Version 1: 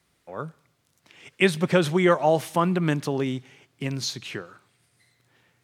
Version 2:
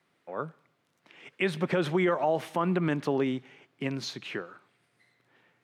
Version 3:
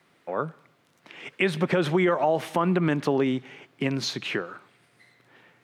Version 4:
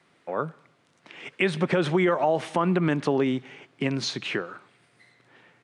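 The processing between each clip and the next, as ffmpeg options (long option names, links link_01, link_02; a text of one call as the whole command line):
ffmpeg -i in.wav -af "highpass=190,bass=frequency=250:gain=0,treble=frequency=4000:gain=-13,alimiter=limit=-16.5dB:level=0:latency=1:release=70" out.wav
ffmpeg -i in.wav -af "acompressor=threshold=-37dB:ratio=1.5,volume=9dB" out.wav
ffmpeg -i in.wav -af "aresample=22050,aresample=44100" out.wav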